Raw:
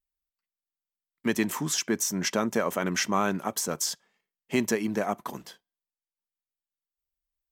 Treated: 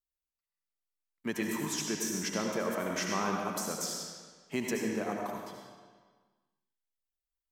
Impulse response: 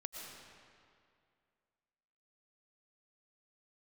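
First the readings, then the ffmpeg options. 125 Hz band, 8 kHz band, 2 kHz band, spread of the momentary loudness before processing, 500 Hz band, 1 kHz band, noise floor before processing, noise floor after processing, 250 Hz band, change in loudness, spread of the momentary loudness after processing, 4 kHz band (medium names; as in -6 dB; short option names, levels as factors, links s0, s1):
-6.0 dB, -6.0 dB, -5.5 dB, 7 LU, -5.0 dB, -5.0 dB, under -85 dBFS, under -85 dBFS, -5.5 dB, -6.0 dB, 10 LU, -5.5 dB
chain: -filter_complex "[1:a]atrim=start_sample=2205,asetrate=66150,aresample=44100[s0];[0:a][s0]afir=irnorm=-1:irlink=0"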